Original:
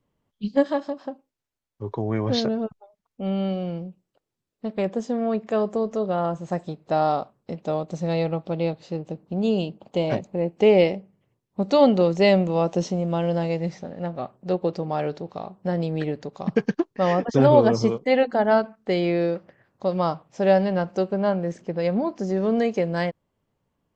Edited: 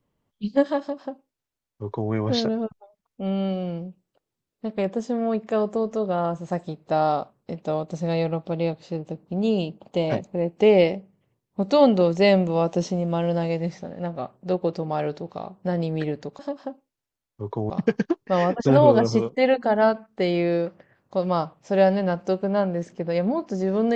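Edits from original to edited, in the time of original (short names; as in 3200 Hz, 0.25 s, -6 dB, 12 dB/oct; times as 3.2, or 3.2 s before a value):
0.8–2.11 copy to 16.39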